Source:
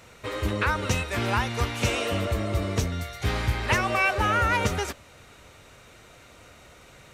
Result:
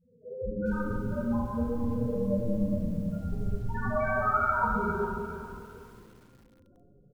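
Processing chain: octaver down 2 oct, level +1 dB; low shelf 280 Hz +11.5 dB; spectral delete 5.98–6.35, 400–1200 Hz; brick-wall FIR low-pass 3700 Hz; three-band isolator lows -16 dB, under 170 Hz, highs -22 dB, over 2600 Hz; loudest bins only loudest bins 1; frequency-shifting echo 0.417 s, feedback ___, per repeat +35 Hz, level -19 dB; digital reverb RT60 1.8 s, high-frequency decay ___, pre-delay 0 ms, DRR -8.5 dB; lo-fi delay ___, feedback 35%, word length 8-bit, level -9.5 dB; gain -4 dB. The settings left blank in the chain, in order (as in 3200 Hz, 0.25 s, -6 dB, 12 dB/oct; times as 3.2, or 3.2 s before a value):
38%, 0.45×, 0.405 s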